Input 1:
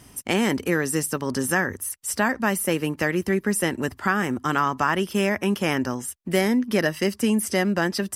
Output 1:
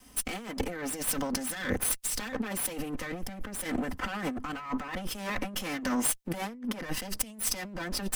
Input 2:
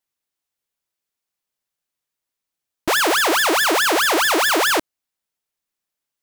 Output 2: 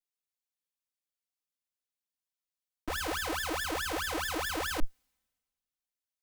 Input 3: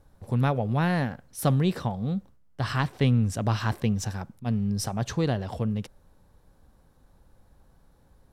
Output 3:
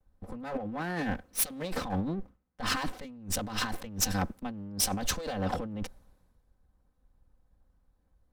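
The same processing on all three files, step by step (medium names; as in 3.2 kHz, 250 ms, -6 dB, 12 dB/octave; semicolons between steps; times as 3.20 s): comb filter that takes the minimum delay 3.9 ms; compressor with a negative ratio -34 dBFS, ratio -1; three bands expanded up and down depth 70%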